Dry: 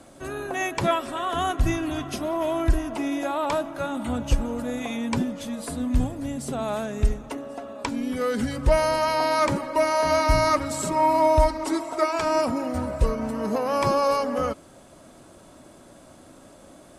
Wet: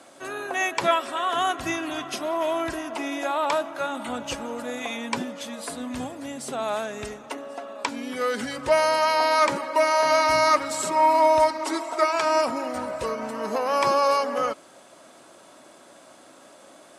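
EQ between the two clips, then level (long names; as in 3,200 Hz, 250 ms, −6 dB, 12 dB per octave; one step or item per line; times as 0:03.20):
meter weighting curve A
+2.5 dB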